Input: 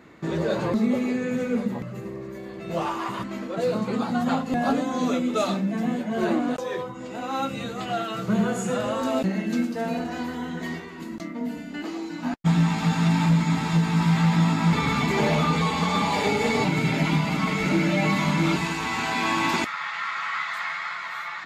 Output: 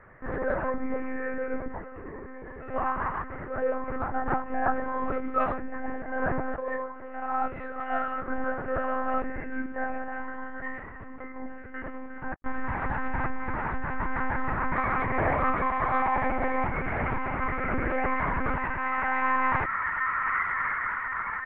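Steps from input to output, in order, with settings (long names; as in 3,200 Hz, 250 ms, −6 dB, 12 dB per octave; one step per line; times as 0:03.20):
elliptic low-pass filter 1,800 Hz, stop band 70 dB
spectral tilt +4 dB per octave
one-pitch LPC vocoder at 8 kHz 260 Hz
level +1.5 dB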